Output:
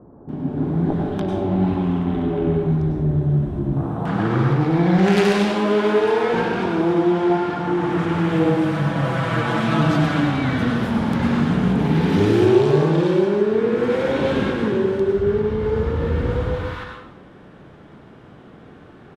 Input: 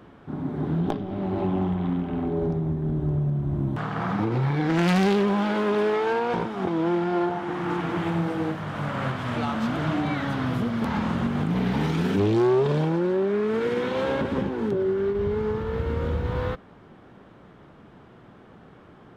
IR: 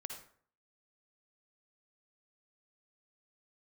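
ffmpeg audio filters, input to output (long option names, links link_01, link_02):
-filter_complex "[0:a]asettb=1/sr,asplit=3[link_01][link_02][link_03];[link_01]atrim=end=8.324[link_04];[link_02]atrim=start=8.32:end=9.91,asetpts=PTS-STARTPTS,afade=type=in:duration=0.004:curve=qsin,afade=type=out:start_time=1.586:duration=0.004:curve=qsin,aecho=1:1:6.1:0.97,atrim=end_sample=70119[link_05];[link_03]atrim=start=9.906[link_06];[link_04][link_05]acrossfade=duration=0.004:curve1=hsin:curve2=qsin[link_07];[link_07][link_06]acrossfade=duration=0.004:curve1=qsin:curve2=hsin,acrossover=split=940[link_08][link_09];[link_09]adelay=290[link_10];[link_08][link_10]amix=inputs=2:normalize=0[link_11];[1:a]atrim=start_sample=2205,asetrate=24255,aresample=44100[link_12];[link_11][link_12]afir=irnorm=-1:irlink=0,volume=5dB"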